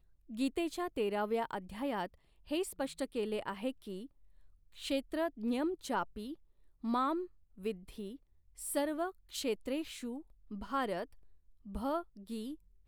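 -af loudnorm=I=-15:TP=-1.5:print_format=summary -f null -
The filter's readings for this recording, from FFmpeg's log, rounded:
Input Integrated:    -38.5 LUFS
Input True Peak:     -20.4 dBTP
Input LRA:             3.6 LU
Input Threshold:     -48.9 LUFS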